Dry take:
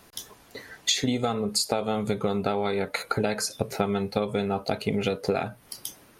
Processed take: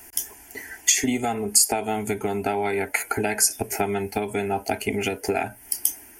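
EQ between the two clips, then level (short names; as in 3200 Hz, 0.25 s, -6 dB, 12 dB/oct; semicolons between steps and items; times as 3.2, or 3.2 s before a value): bell 61 Hz +4.5 dB 0.77 oct; high shelf 3400 Hz +12 dB; fixed phaser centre 790 Hz, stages 8; +4.5 dB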